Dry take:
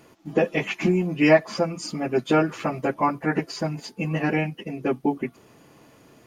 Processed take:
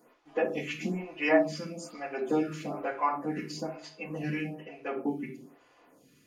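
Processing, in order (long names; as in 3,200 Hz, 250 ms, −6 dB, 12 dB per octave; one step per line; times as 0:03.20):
low-shelf EQ 220 Hz −10.5 dB
rectangular room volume 880 cubic metres, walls furnished, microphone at 1.9 metres
phaser with staggered stages 1.1 Hz
level −6 dB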